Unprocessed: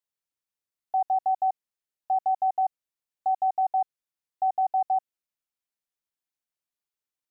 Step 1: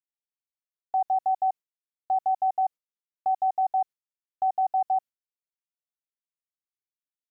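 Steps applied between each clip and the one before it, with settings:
noise gate with hold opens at −36 dBFS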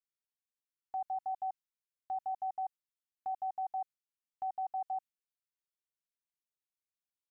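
parametric band 570 Hz −14.5 dB 0.83 octaves
level −5 dB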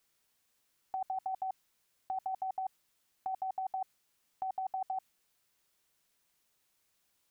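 compressor whose output falls as the input rises −45 dBFS, ratio −1
level +9.5 dB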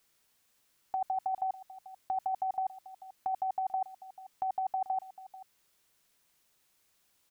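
single-tap delay 439 ms −16.5 dB
level +4 dB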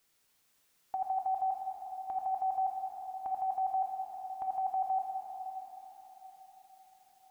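dense smooth reverb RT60 4.9 s, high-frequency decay 1×, DRR 0.5 dB
level −2 dB

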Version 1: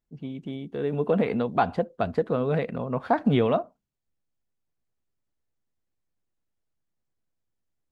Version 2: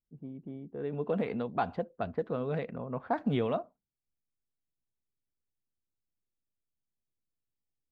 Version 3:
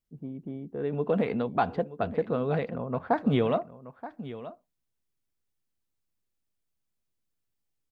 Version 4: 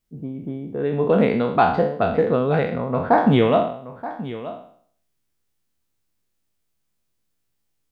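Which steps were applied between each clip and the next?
low-pass that shuts in the quiet parts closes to 480 Hz, open at −18.5 dBFS; level −8 dB
single-tap delay 927 ms −14.5 dB; level +5 dB
peak hold with a decay on every bin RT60 0.57 s; level +7 dB

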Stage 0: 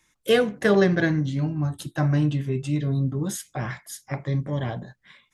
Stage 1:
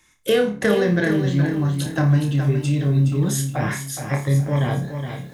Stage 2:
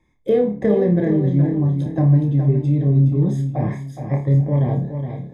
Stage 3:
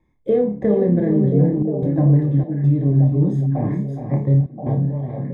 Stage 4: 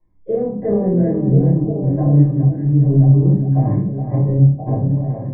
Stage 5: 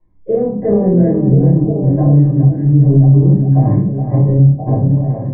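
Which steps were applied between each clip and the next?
downward compressor 4 to 1, threshold −24 dBFS, peak gain reduction 9 dB; on a send: flutter between parallel walls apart 4.9 metres, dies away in 0.29 s; on the sum: feedback echo at a low word length 418 ms, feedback 35%, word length 9 bits, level −8 dB; level +6 dB
moving average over 31 samples; level +3 dB
high-shelf EQ 2,000 Hz −12 dB; gate pattern "xxxxxxxx.xxx.x" 74 BPM −60 dB; on a send: echo through a band-pass that steps 514 ms, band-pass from 230 Hz, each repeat 1.4 octaves, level −2 dB
low-pass filter 1,400 Hz 12 dB per octave; automatic gain control gain up to 3.5 dB; rectangular room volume 240 cubic metres, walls furnished, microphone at 4.8 metres; level −10.5 dB
high-frequency loss of the air 220 metres; boost into a limiter +6 dB; level −1 dB

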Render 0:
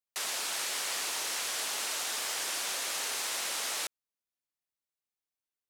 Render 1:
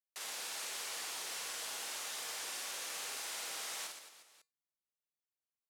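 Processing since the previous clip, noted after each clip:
tuned comb filter 160 Hz, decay 0.26 s, harmonics odd, mix 50%
on a send: reverse bouncing-ball delay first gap 50 ms, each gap 1.4×, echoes 5
on the sum: level −5 dB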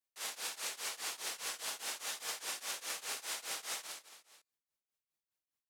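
shaped tremolo triangle 4.9 Hz, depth 95%
level +5 dB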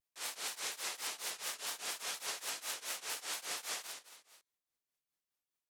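pitch modulation by a square or saw wave square 4.2 Hz, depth 160 cents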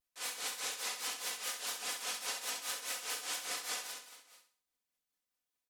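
comb filter 4 ms, depth 56%
on a send: flutter between parallel walls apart 11.3 metres, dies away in 0.45 s

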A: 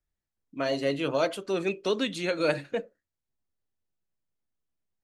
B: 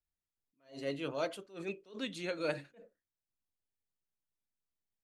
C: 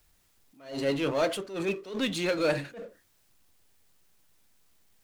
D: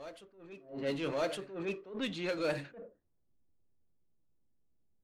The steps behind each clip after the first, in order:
level that may rise only so fast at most 170 dB per second; level −9 dB
power curve on the samples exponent 0.7; level +5.5 dB
low-pass that shuts in the quiet parts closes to 370 Hz, open at −23.5 dBFS; backwards echo 1,160 ms −14 dB; level −7 dB

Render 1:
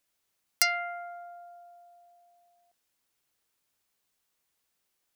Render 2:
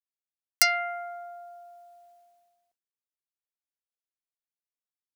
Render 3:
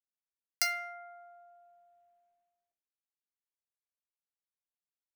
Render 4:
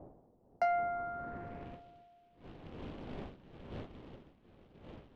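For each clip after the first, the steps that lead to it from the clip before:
downward expander −60 dBFS; level +3.5 dB
adaptive Wiener filter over 9 samples; resonators tuned to a chord C2 major, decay 0.22 s
wind on the microphone 370 Hz −57 dBFS; floating-point word with a short mantissa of 2 bits; low-pass filter sweep 720 Hz → 3,100 Hz, 0:00.68–0:01.82; level +6.5 dB

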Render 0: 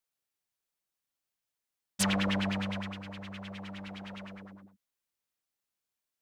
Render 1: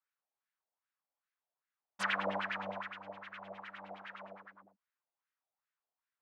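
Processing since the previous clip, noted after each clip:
LFO wah 2.5 Hz 670–1,700 Hz, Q 2.6
level +6 dB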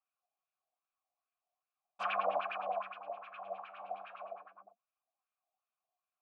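flanger 0.4 Hz, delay 2.3 ms, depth 9.7 ms, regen +63%
formant filter a
level +15.5 dB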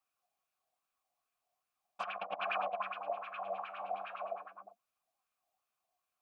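compressor whose output falls as the input rises −39 dBFS, ratio −0.5
level +2.5 dB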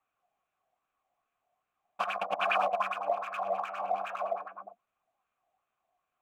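adaptive Wiener filter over 9 samples
level +8 dB

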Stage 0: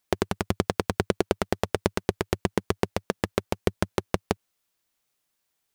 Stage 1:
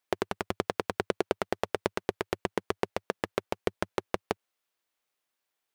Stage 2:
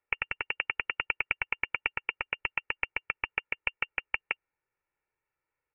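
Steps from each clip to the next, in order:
bass and treble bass −11 dB, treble −6 dB; level −2.5 dB
voice inversion scrambler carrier 2,900 Hz; comb filter 2.2 ms, depth 60%; level −1.5 dB

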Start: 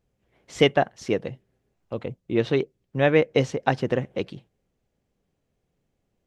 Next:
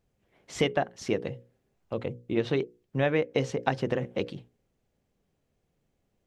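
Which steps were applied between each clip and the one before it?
downward compressor 3 to 1, threshold −23 dBFS, peak gain reduction 8.5 dB
mains-hum notches 60/120/180/240/300/360/420/480/540 Hz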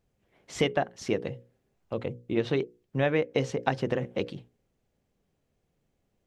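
no processing that can be heard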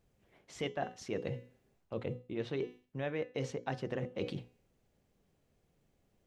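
hum removal 250.9 Hz, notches 30
reversed playback
downward compressor 6 to 1, threshold −36 dBFS, peak gain reduction 15.5 dB
reversed playback
level +1.5 dB

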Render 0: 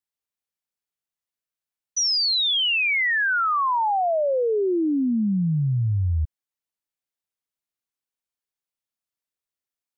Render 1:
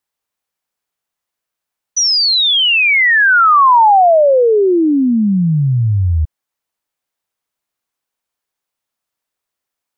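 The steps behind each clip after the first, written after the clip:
parametric band 910 Hz +5.5 dB 2.1 octaves
level +8.5 dB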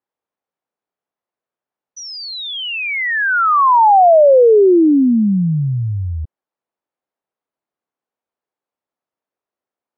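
resonant band-pass 410 Hz, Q 0.67
level +2 dB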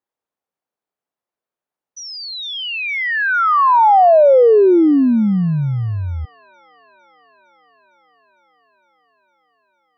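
delay with a high-pass on its return 457 ms, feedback 77%, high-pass 1,600 Hz, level −21 dB
level −1 dB

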